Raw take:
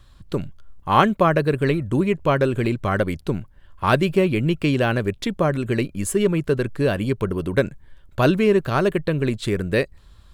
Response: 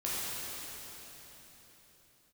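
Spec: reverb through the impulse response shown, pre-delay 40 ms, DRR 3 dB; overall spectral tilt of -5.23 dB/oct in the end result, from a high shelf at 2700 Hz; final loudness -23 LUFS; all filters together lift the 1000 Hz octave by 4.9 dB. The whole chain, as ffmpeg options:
-filter_complex "[0:a]equalizer=f=1k:t=o:g=5.5,highshelf=f=2.7k:g=4,asplit=2[a][b];[1:a]atrim=start_sample=2205,adelay=40[c];[b][c]afir=irnorm=-1:irlink=0,volume=-10dB[d];[a][d]amix=inputs=2:normalize=0,volume=-5dB"

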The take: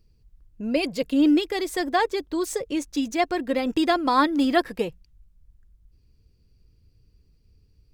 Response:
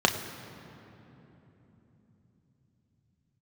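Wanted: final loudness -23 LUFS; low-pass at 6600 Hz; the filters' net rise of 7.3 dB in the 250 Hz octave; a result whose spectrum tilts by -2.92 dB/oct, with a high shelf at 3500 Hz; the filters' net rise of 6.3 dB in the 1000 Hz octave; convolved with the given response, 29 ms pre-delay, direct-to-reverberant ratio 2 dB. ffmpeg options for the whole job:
-filter_complex "[0:a]lowpass=6.6k,equalizer=f=250:t=o:g=8.5,equalizer=f=1k:t=o:g=7,highshelf=f=3.5k:g=7,asplit=2[a][b];[1:a]atrim=start_sample=2205,adelay=29[c];[b][c]afir=irnorm=-1:irlink=0,volume=-17dB[d];[a][d]amix=inputs=2:normalize=0,volume=-7dB"

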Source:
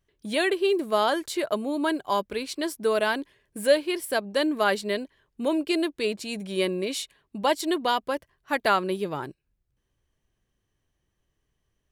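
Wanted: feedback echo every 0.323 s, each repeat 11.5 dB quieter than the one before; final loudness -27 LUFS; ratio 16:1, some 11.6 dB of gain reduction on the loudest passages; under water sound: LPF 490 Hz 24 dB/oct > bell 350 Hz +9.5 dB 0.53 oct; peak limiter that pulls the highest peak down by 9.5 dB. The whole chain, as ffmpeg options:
-af "acompressor=threshold=-25dB:ratio=16,alimiter=level_in=1dB:limit=-24dB:level=0:latency=1,volume=-1dB,lowpass=f=490:w=0.5412,lowpass=f=490:w=1.3066,equalizer=f=350:t=o:w=0.53:g=9.5,aecho=1:1:323|646|969:0.266|0.0718|0.0194,volume=4dB"

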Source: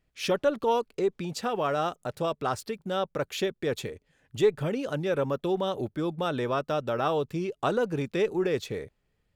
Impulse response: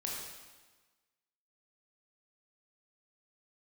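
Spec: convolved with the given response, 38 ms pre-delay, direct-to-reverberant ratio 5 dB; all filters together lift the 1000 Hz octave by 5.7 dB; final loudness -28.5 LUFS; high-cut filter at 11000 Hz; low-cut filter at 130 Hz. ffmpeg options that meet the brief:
-filter_complex "[0:a]highpass=130,lowpass=11k,equalizer=f=1k:t=o:g=7.5,asplit=2[a][b];[1:a]atrim=start_sample=2205,adelay=38[c];[b][c]afir=irnorm=-1:irlink=0,volume=-6.5dB[d];[a][d]amix=inputs=2:normalize=0,volume=-3dB"

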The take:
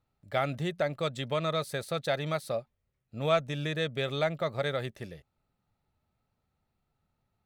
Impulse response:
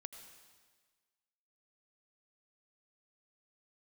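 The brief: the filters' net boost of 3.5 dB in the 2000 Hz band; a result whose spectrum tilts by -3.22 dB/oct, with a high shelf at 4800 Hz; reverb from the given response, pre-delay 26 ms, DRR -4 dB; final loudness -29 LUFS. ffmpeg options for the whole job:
-filter_complex "[0:a]equalizer=f=2k:t=o:g=3,highshelf=f=4.8k:g=7.5,asplit=2[a][b];[1:a]atrim=start_sample=2205,adelay=26[c];[b][c]afir=irnorm=-1:irlink=0,volume=8.5dB[d];[a][d]amix=inputs=2:normalize=0,volume=-4dB"

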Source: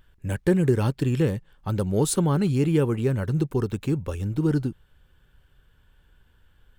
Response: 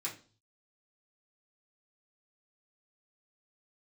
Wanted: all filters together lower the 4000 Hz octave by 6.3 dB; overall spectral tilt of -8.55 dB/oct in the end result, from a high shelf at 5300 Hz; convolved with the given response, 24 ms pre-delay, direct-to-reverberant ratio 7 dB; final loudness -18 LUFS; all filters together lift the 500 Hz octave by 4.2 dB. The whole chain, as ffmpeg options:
-filter_complex "[0:a]equalizer=f=500:t=o:g=5.5,equalizer=f=4k:t=o:g=-6.5,highshelf=f=5.3k:g=-4,asplit=2[a][b];[1:a]atrim=start_sample=2205,adelay=24[c];[b][c]afir=irnorm=-1:irlink=0,volume=-8.5dB[d];[a][d]amix=inputs=2:normalize=0,volume=4dB"

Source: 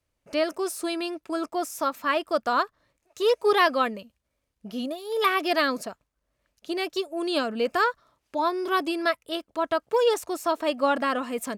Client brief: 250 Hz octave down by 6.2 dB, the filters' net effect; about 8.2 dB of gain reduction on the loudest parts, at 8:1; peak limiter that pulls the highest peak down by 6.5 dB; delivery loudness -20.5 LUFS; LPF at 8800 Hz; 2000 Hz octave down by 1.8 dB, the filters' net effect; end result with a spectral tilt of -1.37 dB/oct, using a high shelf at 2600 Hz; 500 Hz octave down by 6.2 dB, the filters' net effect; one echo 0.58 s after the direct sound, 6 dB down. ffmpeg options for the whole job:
-af "lowpass=8.8k,equalizer=f=250:t=o:g=-5.5,equalizer=f=500:t=o:g=-6.5,equalizer=f=2k:t=o:g=-3.5,highshelf=f=2.6k:g=4,acompressor=threshold=-27dB:ratio=8,alimiter=limit=-23dB:level=0:latency=1,aecho=1:1:580:0.501,volume=13.5dB"

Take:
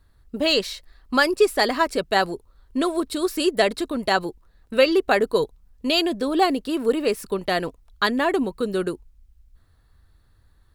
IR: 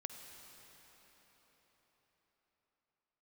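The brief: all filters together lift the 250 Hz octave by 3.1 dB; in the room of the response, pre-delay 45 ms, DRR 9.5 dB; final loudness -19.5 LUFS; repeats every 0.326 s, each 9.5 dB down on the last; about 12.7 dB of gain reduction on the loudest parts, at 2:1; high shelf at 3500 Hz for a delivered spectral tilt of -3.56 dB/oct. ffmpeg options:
-filter_complex "[0:a]equalizer=f=250:t=o:g=4,highshelf=f=3.5k:g=6,acompressor=threshold=-35dB:ratio=2,aecho=1:1:326|652|978|1304:0.335|0.111|0.0365|0.012,asplit=2[a][b];[1:a]atrim=start_sample=2205,adelay=45[c];[b][c]afir=irnorm=-1:irlink=0,volume=-7dB[d];[a][d]amix=inputs=2:normalize=0,volume=11dB"

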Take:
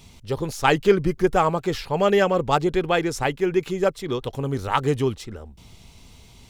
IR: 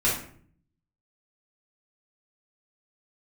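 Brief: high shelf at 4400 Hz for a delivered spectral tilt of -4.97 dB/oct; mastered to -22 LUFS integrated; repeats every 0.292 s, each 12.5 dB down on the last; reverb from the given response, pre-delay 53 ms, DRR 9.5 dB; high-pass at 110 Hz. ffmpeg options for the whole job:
-filter_complex "[0:a]highpass=110,highshelf=f=4.4k:g=7,aecho=1:1:292|584|876:0.237|0.0569|0.0137,asplit=2[a][b];[1:a]atrim=start_sample=2205,adelay=53[c];[b][c]afir=irnorm=-1:irlink=0,volume=-22dB[d];[a][d]amix=inputs=2:normalize=0,volume=-0.5dB"

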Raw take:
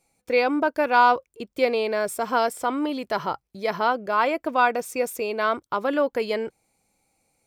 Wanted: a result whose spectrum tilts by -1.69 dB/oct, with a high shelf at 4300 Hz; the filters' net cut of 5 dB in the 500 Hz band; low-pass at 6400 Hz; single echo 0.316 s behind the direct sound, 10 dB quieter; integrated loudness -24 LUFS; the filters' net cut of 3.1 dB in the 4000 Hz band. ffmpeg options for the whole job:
-af "lowpass=6.4k,equalizer=f=500:t=o:g=-6,equalizer=f=4k:t=o:g=-5,highshelf=f=4.3k:g=3,aecho=1:1:316:0.316,volume=2dB"

